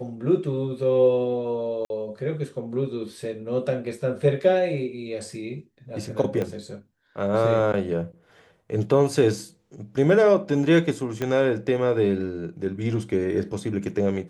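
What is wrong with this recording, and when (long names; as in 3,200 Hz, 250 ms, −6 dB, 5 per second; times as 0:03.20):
0:01.85–0:01.90: drop-out 51 ms
0:06.42: click −16 dBFS
0:11.22: click −14 dBFS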